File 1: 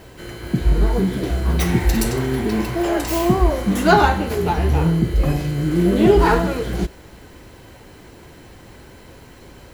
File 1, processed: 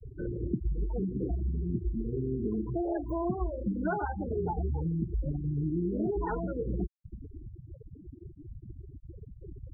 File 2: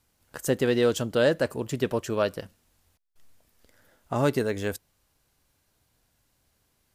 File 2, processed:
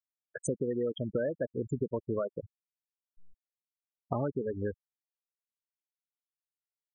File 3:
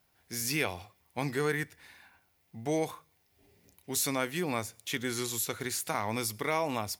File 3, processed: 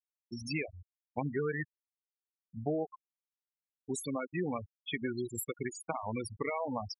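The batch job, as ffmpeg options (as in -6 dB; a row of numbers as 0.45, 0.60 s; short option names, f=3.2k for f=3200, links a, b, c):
-af "acompressor=threshold=-31dB:ratio=10,afftfilt=real='re*gte(hypot(re,im),0.0447)':imag='im*gte(hypot(re,im),0.0447)':win_size=1024:overlap=0.75,volume=3dB"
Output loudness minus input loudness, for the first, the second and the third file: -14.5, -8.0, -5.0 LU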